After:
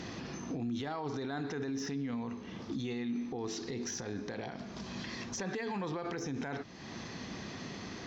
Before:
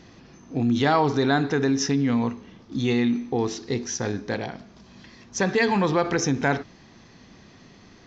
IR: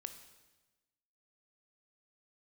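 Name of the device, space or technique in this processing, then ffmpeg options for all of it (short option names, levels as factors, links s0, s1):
podcast mastering chain: -af "highpass=f=97:p=1,deesser=0.8,acompressor=threshold=0.00794:ratio=2.5,alimiter=level_in=4.47:limit=0.0631:level=0:latency=1:release=51,volume=0.224,volume=2.51" -ar 48000 -c:a libmp3lame -b:a 96k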